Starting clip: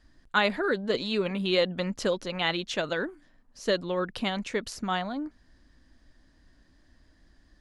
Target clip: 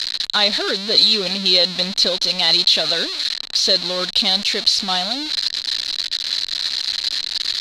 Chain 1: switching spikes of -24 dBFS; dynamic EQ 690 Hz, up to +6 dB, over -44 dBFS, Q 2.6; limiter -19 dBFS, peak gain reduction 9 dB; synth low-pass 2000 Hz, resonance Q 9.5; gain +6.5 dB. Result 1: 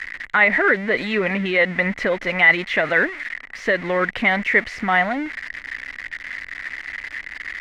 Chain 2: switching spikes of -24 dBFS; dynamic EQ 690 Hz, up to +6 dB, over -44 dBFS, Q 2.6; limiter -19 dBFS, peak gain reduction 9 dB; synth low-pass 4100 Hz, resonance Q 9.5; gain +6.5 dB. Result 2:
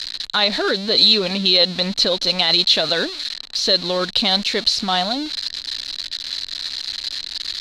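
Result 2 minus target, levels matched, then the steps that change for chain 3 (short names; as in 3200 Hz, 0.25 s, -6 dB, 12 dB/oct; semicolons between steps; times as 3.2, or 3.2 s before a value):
switching spikes: distortion -9 dB
change: switching spikes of -15 dBFS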